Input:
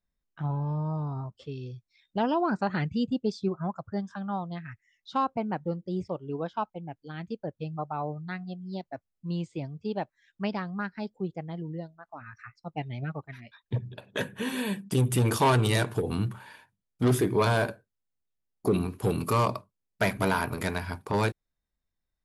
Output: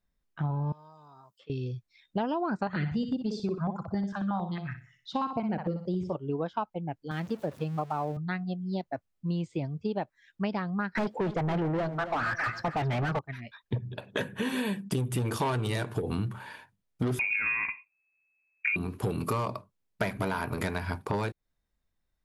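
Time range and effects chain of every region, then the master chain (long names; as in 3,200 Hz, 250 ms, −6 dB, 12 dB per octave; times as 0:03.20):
0:00.72–0:01.50: first difference + multiband upward and downward compressor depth 100%
0:02.67–0:06.15: flutter between parallel walls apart 10.4 metres, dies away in 0.4 s + notch on a step sequencer 11 Hz 300–1,800 Hz
0:07.11–0:08.17: converter with a step at zero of −45 dBFS + high-pass filter 120 Hz
0:10.95–0:13.19: mid-hump overdrive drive 36 dB, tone 1,400 Hz, clips at −20 dBFS + repeating echo 271 ms, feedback 28%, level −14 dB
0:17.19–0:18.76: downward compressor, threshold −24 dBFS + parametric band 150 Hz +11 dB 1.8 octaves + voice inversion scrambler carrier 2,600 Hz
whole clip: high-shelf EQ 4,700 Hz −5.5 dB; downward compressor 6 to 1, threshold −32 dBFS; level +5 dB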